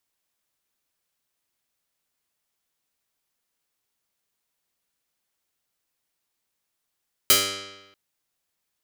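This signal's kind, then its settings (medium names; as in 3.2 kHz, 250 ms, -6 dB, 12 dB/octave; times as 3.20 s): plucked string G2, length 0.64 s, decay 1.08 s, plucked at 0.11, medium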